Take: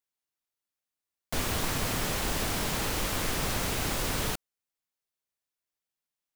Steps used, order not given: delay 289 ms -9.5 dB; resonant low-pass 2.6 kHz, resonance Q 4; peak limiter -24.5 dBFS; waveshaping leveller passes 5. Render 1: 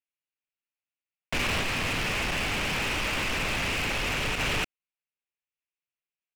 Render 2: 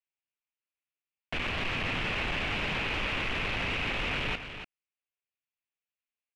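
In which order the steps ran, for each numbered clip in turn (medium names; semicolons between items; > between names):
resonant low-pass > waveshaping leveller > delay > peak limiter; waveshaping leveller > resonant low-pass > peak limiter > delay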